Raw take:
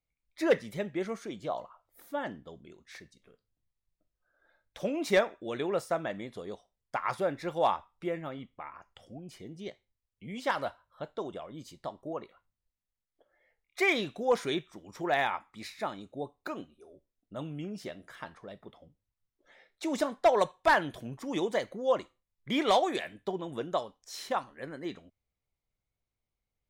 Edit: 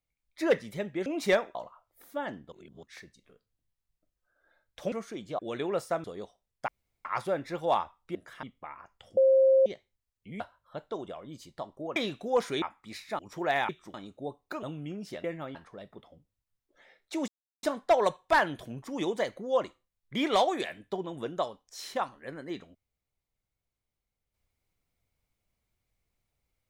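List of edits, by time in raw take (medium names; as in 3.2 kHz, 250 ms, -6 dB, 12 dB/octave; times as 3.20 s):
1.06–1.53 s: swap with 4.90–5.39 s
2.50–2.81 s: reverse
6.04–6.34 s: delete
6.98 s: insert room tone 0.37 s
8.08–8.39 s: swap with 17.97–18.25 s
9.13–9.62 s: bleep 532 Hz -17.5 dBFS
10.36–10.66 s: delete
12.22–13.91 s: delete
14.57–14.82 s: swap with 15.32–15.89 s
16.58–17.36 s: delete
19.98 s: insert silence 0.35 s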